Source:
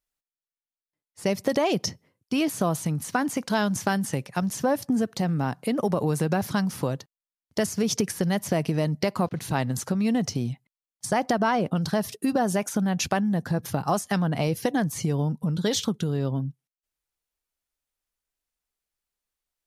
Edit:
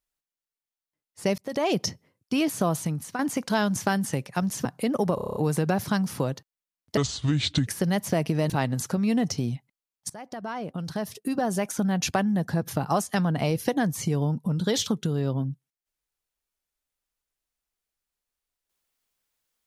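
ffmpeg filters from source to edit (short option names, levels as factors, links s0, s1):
-filter_complex "[0:a]asplit=15[s0][s1][s2][s3][s4][s5][s6][s7][s8][s9][s10][s11][s12][s13][s14];[s0]atrim=end=1.38,asetpts=PTS-STARTPTS,afade=t=out:st=1.376:d=0.004:c=hsin[s15];[s1]atrim=start=1.38:end=3.19,asetpts=PTS-STARTPTS,afade=t=in:d=0.32,afade=t=out:st=1.42:d=0.39:silence=0.354813[s16];[s2]atrim=start=3.19:end=4.652,asetpts=PTS-STARTPTS,afade=t=in:d=0.004:c=hsin:silence=0.354813[s17];[s3]atrim=start=5.488:end=6.022[s18];[s4]atrim=start=5.988:end=6.022[s19];[s5]atrim=start=5.988:end=6.022[s20];[s6]atrim=start=5.988:end=6.022[s21];[s7]atrim=start=5.988:end=6.022[s22];[s8]atrim=start=5.988:end=6.022[s23];[s9]atrim=start=5.988:end=6.022[s24];[s10]atrim=start=5.988:end=7.604[s25];[s11]atrim=start=7.6:end=8.06,asetpts=PTS-STARTPTS,asetrate=29106,aresample=44100,atrim=end_sample=30736,asetpts=PTS-STARTPTS[s26];[s12]atrim=start=8.056:end=8.892[s27];[s13]atrim=start=9.468:end=11.07,asetpts=PTS-STARTPTS,afade=t=out:st=1.598:d=0.004:c=hsin:silence=0.0891251[s28];[s14]atrim=start=11.07,asetpts=PTS-STARTPTS,afade=t=in:d=1.86:silence=0.0891251[s29];[s15][s16][s17]concat=n=3:v=0:a=1[s30];[s30][s18]acrossfade=d=0.004:c1=hsin:c2=hsin[s31];[s31][s19]acrossfade=d=0.004:c1=hsin:c2=hsin[s32];[s32][s20]acrossfade=d=0.004:c1=hsin:c2=hsin[s33];[s33][s21]acrossfade=d=0.004:c1=hsin:c2=hsin[s34];[s34][s22]acrossfade=d=0.004:c1=hsin:c2=hsin[s35];[s35][s23]acrossfade=d=0.004:c1=hsin:c2=hsin[s36];[s36][s24]acrossfade=d=0.004:c1=hsin:c2=hsin[s37];[s37][s25]acrossfade=d=0.004:c1=hsin:c2=hsin[s38];[s38][s26]acrossfade=d=0.004:c1=hsin:c2=hsin[s39];[s39][s27]acrossfade=d=0.004:c1=hsin:c2=hsin[s40];[s28][s29]concat=n=2:v=0:a=1[s41];[s40][s41]acrossfade=d=0.004:c1=hsin:c2=hsin"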